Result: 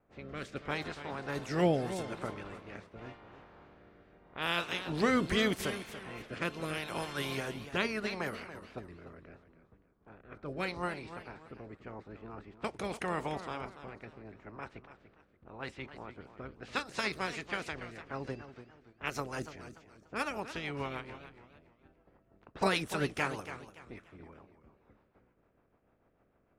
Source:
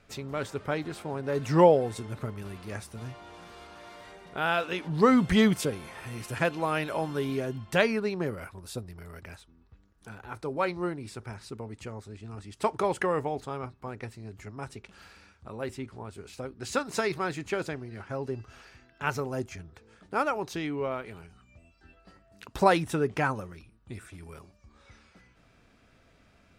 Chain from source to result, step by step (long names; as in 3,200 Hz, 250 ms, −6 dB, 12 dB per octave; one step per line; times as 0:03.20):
ceiling on every frequency bin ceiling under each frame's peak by 17 dB
low-pass that shuts in the quiet parts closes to 800 Hz, open at −27 dBFS
rotating-speaker cabinet horn 0.8 Hz, later 6.7 Hz, at 0:16.42
feedback echo with a swinging delay time 288 ms, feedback 32%, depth 141 cents, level −12 dB
level −4 dB